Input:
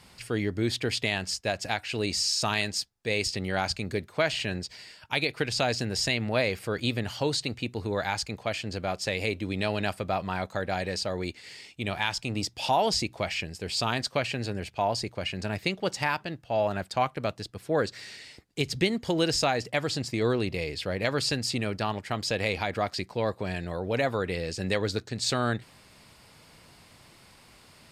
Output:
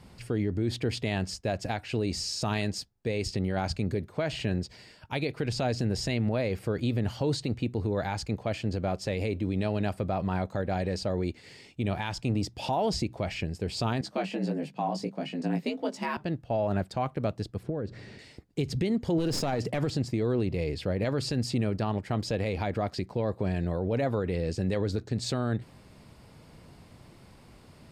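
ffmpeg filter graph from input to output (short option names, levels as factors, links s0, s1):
-filter_complex "[0:a]asettb=1/sr,asplit=3[s0][s1][s2];[s0]atrim=end=14.014[s3];[s1]atrim=start=14.01:end=16.17,asetpts=PTS-STARTPTS,afade=t=in:d=0.004:c=qsin,afade=t=out:st=2.156:d=0.004:c=qsin,flanger=delay=16:depth=3.3:speed=1.6,afreqshift=74[s4];[s2]atrim=start=16.166[s5];[s3][s4]acrossfade=d=0.004:c1=hsin:c2=qsin[s6];[s6][s5]acrossfade=d=0.004:c1=qsin:c2=hsin,asettb=1/sr,asplit=3[s7][s8][s9];[s7]atrim=end=17.634[s10];[s8]atrim=start=17.63:end=18.19,asetpts=PTS-STARTPTS,afade=t=in:d=0.004:c=qsin,afade=t=out:st=0.556:d=0.004:c=qsin,lowpass=f=2400:p=1,lowshelf=f=450:g=8,acompressor=threshold=0.0251:ratio=12:attack=3.2:release=140:knee=1:detection=peak[s11];[s9]atrim=start=18.186[s12];[s10][s11]acrossfade=d=0.004:c1=hsin:c2=qsin[s13];[s13][s12]acrossfade=d=0.004:c1=qsin:c2=hsin,asettb=1/sr,asplit=3[s14][s15][s16];[s14]atrim=end=19.184[s17];[s15]atrim=start=19.18:end=19.9,asetpts=PTS-STARTPTS,afade=t=in:d=0.004:c=qsin,afade=t=out:st=0.716:d=0.004:c=qsin,highpass=100,acontrast=76,aeval=exprs='clip(val(0),-1,0.0794)':c=same[s18];[s16]atrim=start=19.896[s19];[s17][s18]acrossfade=d=0.004:c1=hsin:c2=qsin[s20];[s20][s19]acrossfade=d=0.004:c1=qsin:c2=hsin,tiltshelf=f=810:g=7,alimiter=limit=0.106:level=0:latency=1:release=57"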